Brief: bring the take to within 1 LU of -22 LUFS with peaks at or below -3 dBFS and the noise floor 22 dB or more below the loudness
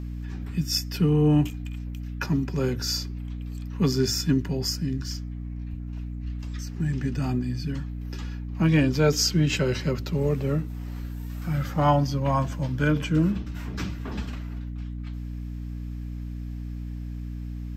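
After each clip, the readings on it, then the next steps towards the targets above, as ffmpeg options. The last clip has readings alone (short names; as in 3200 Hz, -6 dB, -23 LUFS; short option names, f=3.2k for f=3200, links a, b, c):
hum 60 Hz; harmonics up to 300 Hz; hum level -31 dBFS; loudness -27.0 LUFS; peak -8.0 dBFS; loudness target -22.0 LUFS
-> -af "bandreject=f=60:t=h:w=6,bandreject=f=120:t=h:w=6,bandreject=f=180:t=h:w=6,bandreject=f=240:t=h:w=6,bandreject=f=300:t=h:w=6"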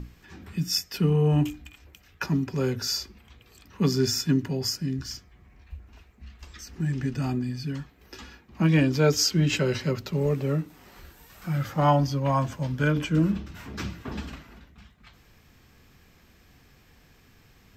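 hum none; loudness -26.0 LUFS; peak -8.5 dBFS; loudness target -22.0 LUFS
-> -af "volume=4dB"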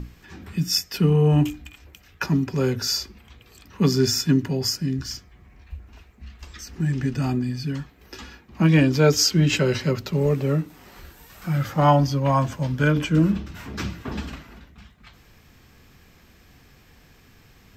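loudness -22.0 LUFS; peak -4.5 dBFS; noise floor -54 dBFS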